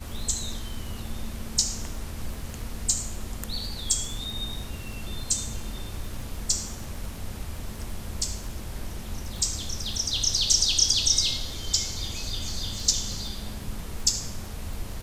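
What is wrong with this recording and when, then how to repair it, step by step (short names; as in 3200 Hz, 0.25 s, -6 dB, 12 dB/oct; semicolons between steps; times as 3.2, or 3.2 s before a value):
crackle 26/s -33 dBFS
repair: de-click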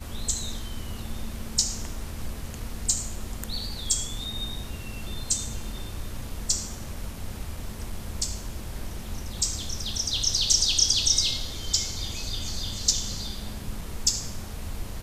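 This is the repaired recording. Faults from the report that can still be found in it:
none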